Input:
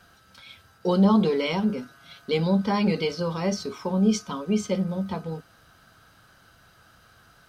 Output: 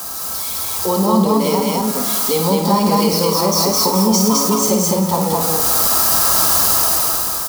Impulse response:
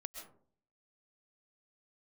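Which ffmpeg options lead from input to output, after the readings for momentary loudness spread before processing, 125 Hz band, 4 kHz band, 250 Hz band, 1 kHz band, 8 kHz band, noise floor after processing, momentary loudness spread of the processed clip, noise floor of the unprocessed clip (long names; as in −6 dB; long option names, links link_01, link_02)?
14 LU, +6.5 dB, +16.0 dB, +6.5 dB, +15.0 dB, +26.5 dB, −24 dBFS, 7 LU, −57 dBFS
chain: -filter_complex "[0:a]aeval=exprs='val(0)+0.5*0.0299*sgn(val(0))':channel_layout=same,highpass=55,bandreject=frequency=1500:width=6.7,aecho=1:1:110.8|212.8:0.316|0.891,dynaudnorm=framelen=100:gausssize=17:maxgain=12dB,equalizer=frequency=2100:width=0.31:gain=-4,acrossover=split=220[link_01][link_02];[link_02]acompressor=threshold=-22dB:ratio=2[link_03];[link_01][link_03]amix=inputs=2:normalize=0,aexciter=amount=2.3:drive=8.8:freq=4500,equalizer=frequency=125:width_type=o:width=1:gain=-12,equalizer=frequency=1000:width_type=o:width=1:gain=10,equalizer=frequency=2000:width_type=o:width=1:gain=-5,asplit=2[link_04][link_05];[1:a]atrim=start_sample=2205,adelay=54[link_06];[link_05][link_06]afir=irnorm=-1:irlink=0,volume=-3dB[link_07];[link_04][link_07]amix=inputs=2:normalize=0,volume=2dB"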